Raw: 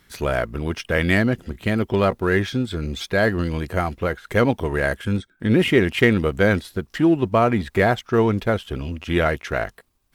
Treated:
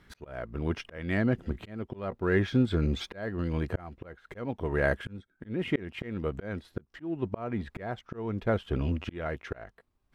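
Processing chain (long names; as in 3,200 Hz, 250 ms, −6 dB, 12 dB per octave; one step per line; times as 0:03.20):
low-pass filter 1,700 Hz 6 dB per octave
volume swells 743 ms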